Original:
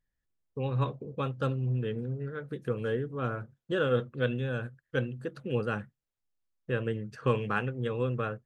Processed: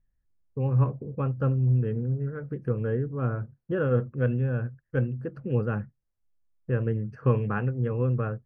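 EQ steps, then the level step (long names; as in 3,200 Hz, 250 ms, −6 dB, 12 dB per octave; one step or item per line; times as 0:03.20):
moving average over 12 samples
low-shelf EQ 170 Hz +12 dB
0.0 dB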